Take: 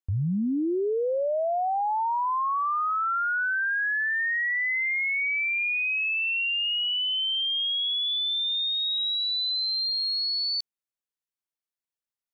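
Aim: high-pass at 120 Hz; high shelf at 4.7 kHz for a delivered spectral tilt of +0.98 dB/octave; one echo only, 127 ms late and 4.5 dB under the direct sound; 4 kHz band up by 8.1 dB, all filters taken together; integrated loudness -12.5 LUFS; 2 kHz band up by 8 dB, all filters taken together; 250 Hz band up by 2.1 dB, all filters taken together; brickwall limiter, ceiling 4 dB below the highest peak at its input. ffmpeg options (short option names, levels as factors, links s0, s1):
-af "highpass=120,equalizer=f=250:t=o:g=3,equalizer=f=2000:t=o:g=7.5,equalizer=f=4000:t=o:g=5.5,highshelf=f=4700:g=4,alimiter=limit=0.126:level=0:latency=1,aecho=1:1:127:0.596,volume=1.88"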